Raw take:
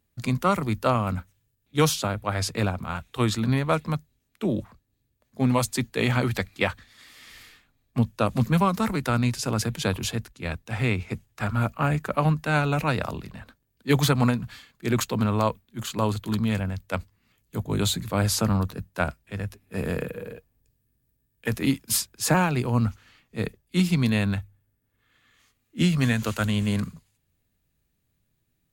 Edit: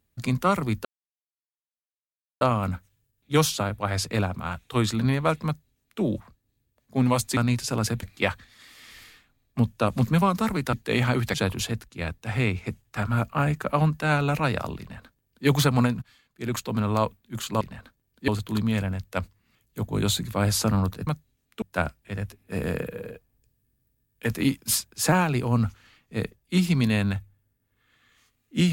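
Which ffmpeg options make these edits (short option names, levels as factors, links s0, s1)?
-filter_complex "[0:a]asplit=11[s0][s1][s2][s3][s4][s5][s6][s7][s8][s9][s10];[s0]atrim=end=0.85,asetpts=PTS-STARTPTS,afade=t=out:st=0.846:d=0.004:c=hsin,apad=pad_dur=1.56[s11];[s1]atrim=start=0.85:end=5.812,asetpts=PTS-STARTPTS,afade=t=in:d=0.004:c=hsin[s12];[s2]atrim=start=9.118:end=9.782[s13];[s3]atrim=start=6.418:end=9.122[s14];[s4]atrim=start=5.808:end=6.422[s15];[s5]atrim=start=9.778:end=14.46,asetpts=PTS-STARTPTS,afade=t=out:st=4.678:d=0.004:c=hsin:silence=0.141254[s16];[s6]atrim=start=14.46:end=16.052,asetpts=PTS-STARTPTS,afade=t=in:d=1.02:silence=0.141254[s17];[s7]atrim=start=13.238:end=13.912[s18];[s8]atrim=start=16.048:end=18.842[s19];[s9]atrim=start=3.898:end=4.452[s20];[s10]atrim=start=18.838[s21];[s11][s12]concat=n=2:v=0:a=1[s22];[s22][s13]acrossfade=d=0.004:c1=hsin:c2=hsin[s23];[s23][s14]acrossfade=d=0.004:c1=hsin:c2=hsin[s24];[s24][s15]acrossfade=d=0.004:c1=hsin:c2=hsin[s25];[s16][s17]concat=n=2:v=0:a=1[s26];[s25][s26]acrossfade=d=0.004:c1=hsin:c2=hsin[s27];[s27][s18]acrossfade=d=0.004:c1=hsin:c2=hsin[s28];[s28][s19]acrossfade=d=0.004:c1=hsin:c2=hsin[s29];[s29][s20]acrossfade=d=0.004:c1=hsin:c2=hsin[s30];[s30][s21]acrossfade=d=0.004:c1=hsin:c2=hsin"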